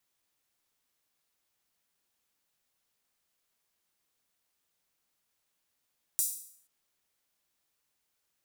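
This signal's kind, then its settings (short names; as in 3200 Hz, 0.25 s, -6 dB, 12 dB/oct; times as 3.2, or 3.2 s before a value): open hi-hat length 0.48 s, high-pass 8000 Hz, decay 0.61 s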